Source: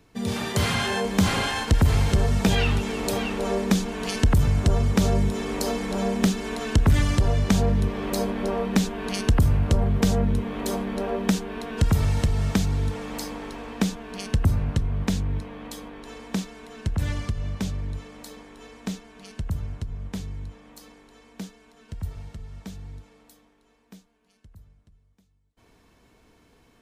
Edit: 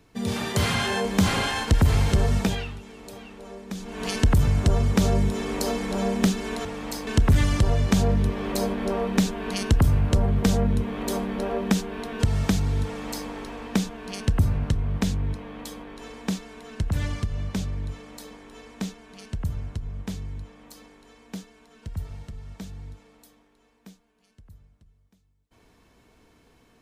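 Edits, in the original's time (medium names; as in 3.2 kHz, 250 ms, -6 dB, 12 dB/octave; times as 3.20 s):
2.37–4.06 s: dip -15.5 dB, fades 0.43 s quadratic
11.83–12.31 s: delete
12.92–13.34 s: copy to 6.65 s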